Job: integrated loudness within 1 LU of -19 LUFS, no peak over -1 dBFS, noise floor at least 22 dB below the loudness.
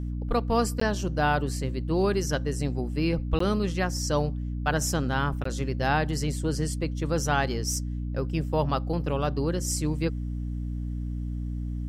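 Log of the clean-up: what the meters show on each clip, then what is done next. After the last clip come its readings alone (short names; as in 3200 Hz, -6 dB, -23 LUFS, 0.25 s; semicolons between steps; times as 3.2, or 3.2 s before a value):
dropouts 3; longest dropout 14 ms; hum 60 Hz; harmonics up to 300 Hz; hum level -29 dBFS; loudness -28.0 LUFS; peak -11.0 dBFS; loudness target -19.0 LUFS
-> interpolate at 0.8/3.39/5.44, 14 ms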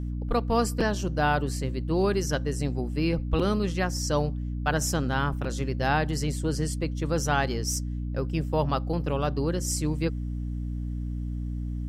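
dropouts 0; hum 60 Hz; harmonics up to 300 Hz; hum level -29 dBFS
-> notches 60/120/180/240/300 Hz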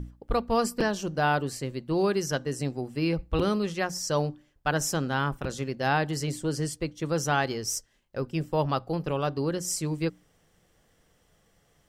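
hum none; loudness -29.0 LUFS; peak -12.5 dBFS; loudness target -19.0 LUFS
-> gain +10 dB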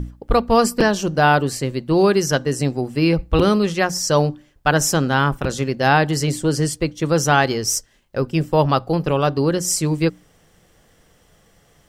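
loudness -19.0 LUFS; peak -2.5 dBFS; noise floor -57 dBFS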